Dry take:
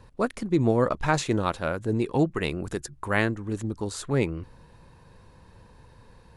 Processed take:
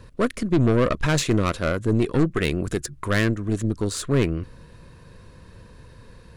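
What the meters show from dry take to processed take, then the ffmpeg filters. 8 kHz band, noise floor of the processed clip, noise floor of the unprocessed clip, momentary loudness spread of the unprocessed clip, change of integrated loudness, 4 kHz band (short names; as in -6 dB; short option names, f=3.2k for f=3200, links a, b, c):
+6.5 dB, -48 dBFS, -54 dBFS, 9 LU, +3.5 dB, +6.0 dB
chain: -af "aeval=exprs='(tanh(12.6*val(0)+0.5)-tanh(0.5))/12.6':c=same,equalizer=f=830:w=4.5:g=-14,volume=8.5dB"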